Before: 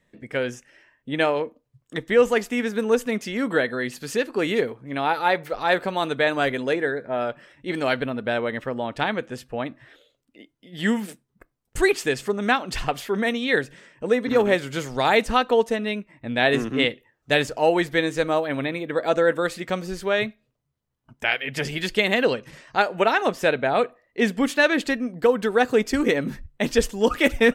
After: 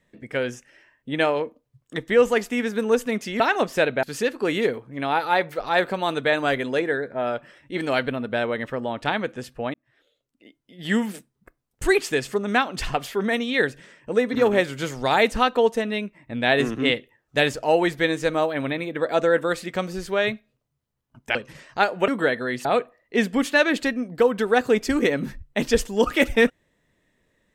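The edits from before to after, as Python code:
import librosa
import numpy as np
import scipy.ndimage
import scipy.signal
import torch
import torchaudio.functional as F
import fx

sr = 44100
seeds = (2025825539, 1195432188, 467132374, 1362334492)

y = fx.edit(x, sr, fx.swap(start_s=3.4, length_s=0.57, other_s=23.06, other_length_s=0.63),
    fx.fade_in_span(start_s=9.68, length_s=1.08),
    fx.cut(start_s=21.29, length_s=1.04), tone=tone)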